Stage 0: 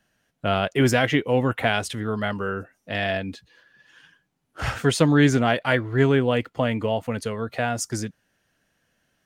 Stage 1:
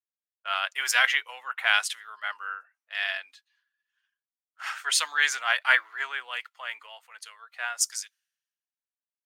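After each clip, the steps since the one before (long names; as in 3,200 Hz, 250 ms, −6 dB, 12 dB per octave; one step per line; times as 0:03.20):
high-pass filter 1,100 Hz 24 dB per octave
multiband upward and downward expander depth 100%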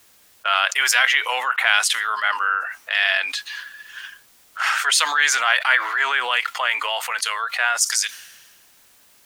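envelope flattener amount 70%
level +2 dB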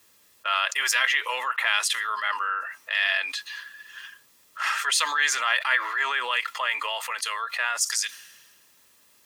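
notch comb filter 750 Hz
level −4 dB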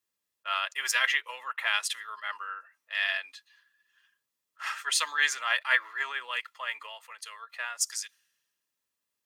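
expander for the loud parts 2.5 to 1, over −37 dBFS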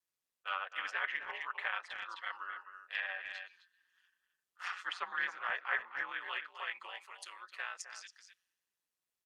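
ring modulation 90 Hz
far-end echo of a speakerphone 260 ms, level −9 dB
treble cut that deepens with the level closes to 1,600 Hz, closed at −28.5 dBFS
level −3 dB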